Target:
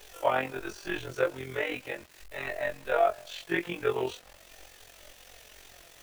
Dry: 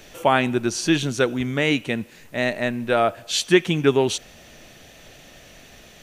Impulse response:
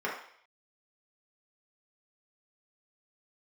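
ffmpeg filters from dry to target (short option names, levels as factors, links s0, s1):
-filter_complex "[0:a]afftfilt=real='re':imag='-im':win_size=2048:overlap=0.75,acrossover=split=110|2500[s0][s1][s2];[s1]highpass=f=400:w=0.5412,highpass=f=400:w=1.3066[s3];[s2]acompressor=threshold=0.00398:ratio=12[s4];[s0][s3][s4]amix=inputs=3:normalize=0,flanger=delay=2.2:depth=3.9:regen=47:speed=0.42:shape=triangular,acrusher=bits=8:mix=0:aa=0.000001,tremolo=f=45:d=0.621,volume=1.68"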